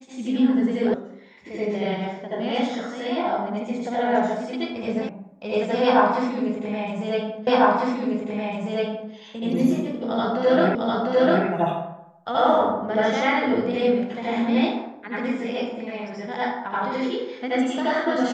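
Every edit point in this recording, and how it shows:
0.94 s: sound stops dead
5.09 s: sound stops dead
7.47 s: repeat of the last 1.65 s
10.75 s: repeat of the last 0.7 s

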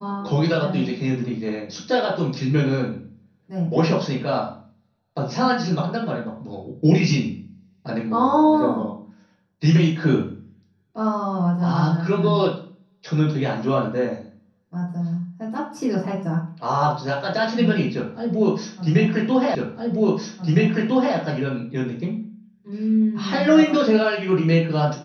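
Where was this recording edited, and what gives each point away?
19.55 s: repeat of the last 1.61 s

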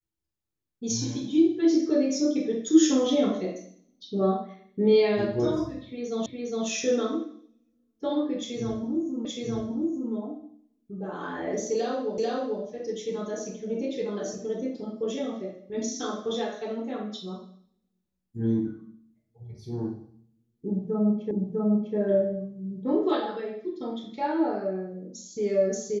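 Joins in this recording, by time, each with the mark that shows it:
6.26 s: repeat of the last 0.41 s
9.25 s: repeat of the last 0.87 s
12.18 s: repeat of the last 0.44 s
21.31 s: repeat of the last 0.65 s

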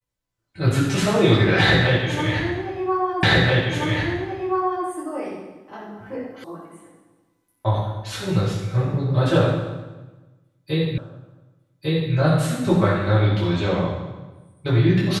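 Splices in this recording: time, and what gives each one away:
3.23 s: repeat of the last 1.63 s
6.44 s: sound stops dead
10.98 s: repeat of the last 1.15 s

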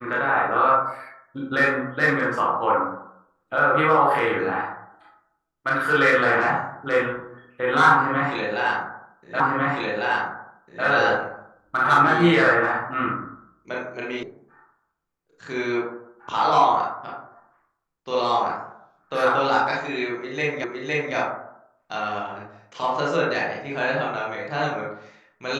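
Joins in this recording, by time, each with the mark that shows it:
9.40 s: repeat of the last 1.45 s
14.23 s: sound stops dead
20.64 s: repeat of the last 0.51 s

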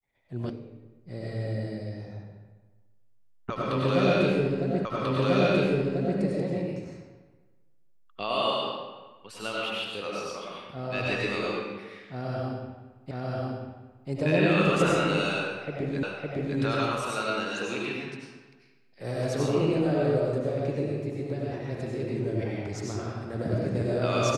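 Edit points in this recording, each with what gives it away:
0.50 s: sound stops dead
4.85 s: repeat of the last 1.34 s
13.11 s: repeat of the last 0.99 s
16.03 s: repeat of the last 0.56 s

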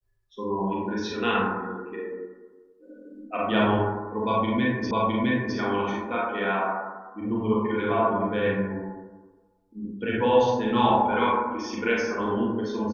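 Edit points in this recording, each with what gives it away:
4.91 s: repeat of the last 0.66 s

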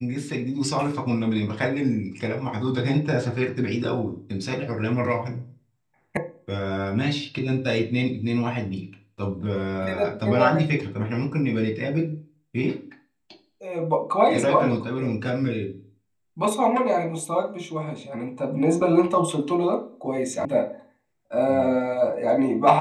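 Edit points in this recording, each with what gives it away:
6.17 s: sound stops dead
20.45 s: sound stops dead

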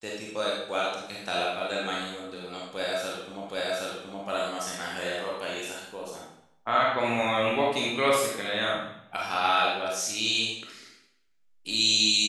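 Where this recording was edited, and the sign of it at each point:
3.49 s: repeat of the last 0.77 s

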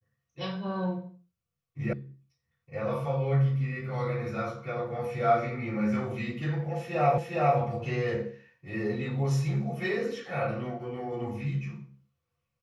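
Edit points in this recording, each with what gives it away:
1.93 s: sound stops dead
7.18 s: repeat of the last 0.41 s

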